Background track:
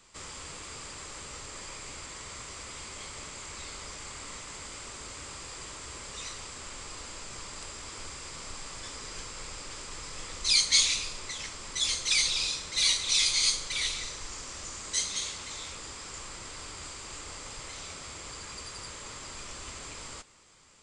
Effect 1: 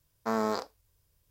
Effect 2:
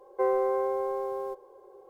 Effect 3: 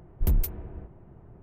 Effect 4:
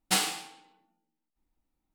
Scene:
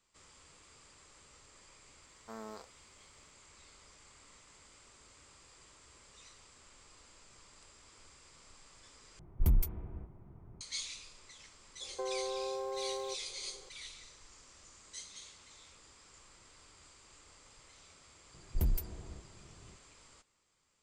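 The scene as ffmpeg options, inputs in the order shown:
ffmpeg -i bed.wav -i cue0.wav -i cue1.wav -i cue2.wav -filter_complex "[3:a]asplit=2[link_01][link_02];[0:a]volume=-17.5dB[link_03];[link_01]aecho=1:1:0.9:0.31[link_04];[2:a]acompressor=threshold=-28dB:ratio=6:attack=3.2:release=140:knee=1:detection=peak[link_05];[link_03]asplit=2[link_06][link_07];[link_06]atrim=end=9.194[link_08];[link_04]atrim=end=1.42,asetpts=PTS-STARTPTS,volume=-6dB[link_09];[link_07]atrim=start=10.606[link_10];[1:a]atrim=end=1.3,asetpts=PTS-STARTPTS,volume=-17.5dB,afade=type=in:duration=0.004:curve=hsin,afade=type=out:start_time=1.296:duration=0.004:curve=hsin,adelay=2020[link_11];[link_05]atrim=end=1.89,asetpts=PTS-STARTPTS,volume=-6dB,afade=type=in:duration=0.004:curve=hsin,afade=type=out:start_time=1.886:duration=0.004:curve=hsin,adelay=11800[link_12];[link_02]atrim=end=1.42,asetpts=PTS-STARTPTS,volume=-7.5dB,afade=type=in:duration=0.004:curve=hsin,afade=type=out:start_time=1.416:duration=0.004:curve=hsin,adelay=18340[link_13];[link_08][link_09]acrossfade=duration=0.004:curve1=hsin:curve2=hsin[link_14];[link_14][link_10]acrossfade=duration=0.004:curve1=hsin:curve2=hsin[link_15];[link_15][link_11][link_12][link_13]amix=inputs=4:normalize=0" out.wav

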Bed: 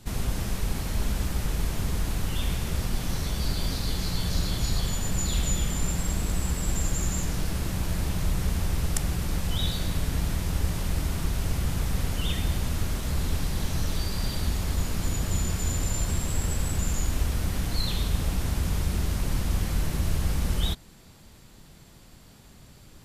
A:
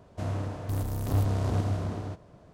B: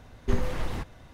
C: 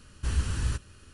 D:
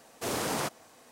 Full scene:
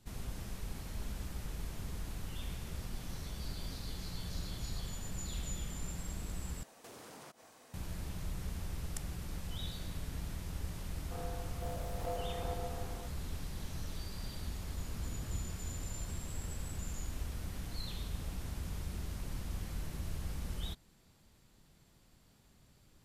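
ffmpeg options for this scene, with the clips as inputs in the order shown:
ffmpeg -i bed.wav -i cue0.wav -i cue1.wav -i cue2.wav -i cue3.wav -filter_complex "[0:a]volume=-14dB[link_01];[4:a]acompressor=threshold=-47dB:ratio=6:attack=3.2:release=140:knee=1:detection=peak[link_02];[1:a]aeval=exprs='val(0)*sin(2*PI*600*n/s)':channel_layout=same[link_03];[3:a]lowpass=1000[link_04];[link_01]asplit=2[link_05][link_06];[link_05]atrim=end=6.634[link_07];[link_02]atrim=end=1.11,asetpts=PTS-STARTPTS,volume=-3.5dB[link_08];[link_06]atrim=start=7.736[link_09];[link_03]atrim=end=2.53,asetpts=PTS-STARTPTS,volume=-12.5dB,afade=type=in:duration=0.004:curve=hsin,afade=type=out:start_time=2.526:duration=0.004:curve=hsin,adelay=10930[link_10];[link_04]atrim=end=1.13,asetpts=PTS-STARTPTS,volume=-16dB,afade=type=in:duration=0.004:curve=hsin,afade=type=out:start_time=1.126:duration=0.004:curve=hsin,adelay=14650[link_11];[link_07][link_08]acrossfade=duration=0.004:curve1=hsin:curve2=hsin[link_12];[link_12][link_09]acrossfade=duration=0.004:curve1=hsin:curve2=hsin[link_13];[link_13][link_10][link_11]amix=inputs=3:normalize=0" out.wav

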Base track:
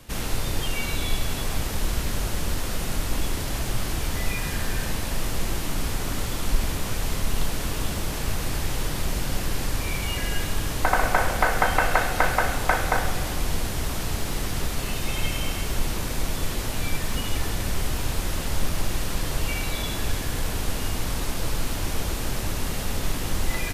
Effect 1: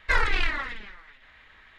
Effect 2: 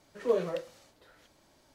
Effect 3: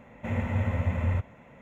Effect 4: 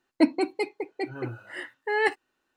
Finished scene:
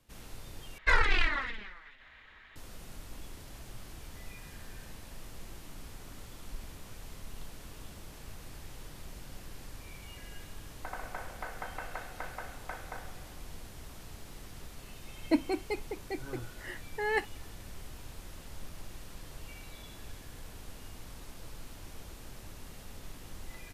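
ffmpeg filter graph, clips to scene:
ffmpeg -i bed.wav -i cue0.wav -i cue1.wav -i cue2.wav -i cue3.wav -filter_complex "[0:a]volume=-20dB,asplit=2[link_01][link_02];[link_01]atrim=end=0.784[link_03];[1:a]atrim=end=1.78,asetpts=PTS-STARTPTS,volume=-2dB[link_04];[link_02]atrim=start=2.556[link_05];[4:a]atrim=end=2.56,asetpts=PTS-STARTPTS,volume=-6.5dB,afade=type=in:duration=0.004:curve=hsin,afade=type=out:start_time=2.556:duration=0.004:curve=hsin,adelay=15110[link_06];[link_03][link_04]acrossfade=duration=0.004:curve1=hsin:curve2=hsin[link_07];[link_07][link_05]acrossfade=duration=0.004:curve1=hsin:curve2=hsin[link_08];[link_08][link_06]amix=inputs=2:normalize=0" out.wav

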